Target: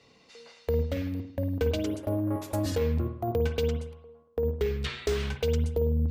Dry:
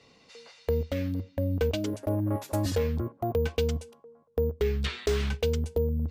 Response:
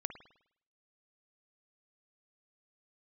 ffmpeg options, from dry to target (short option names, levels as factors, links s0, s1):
-filter_complex "[0:a]asettb=1/sr,asplit=3[s0][s1][s2];[s0]atrim=end=3.684[s3];[s1]atrim=start=3.68:end=4.45,asetpts=PTS-STARTPTS,afade=t=in:d=0.004:c=qsin,afade=t=out:st=0.766:d=0.004:c=qsin,bass=f=250:g=-5,treble=f=4000:g=-6[s4];[s2]atrim=start=4.446[s5];[s3][s4]acrossfade=d=0.004:c1=hsin:c2=qsin[s6];[s6][s5]acrossfade=d=0.004:c1=qsin:c2=hsin[s7];[1:a]atrim=start_sample=2205[s8];[s7][s8]afir=irnorm=-1:irlink=0"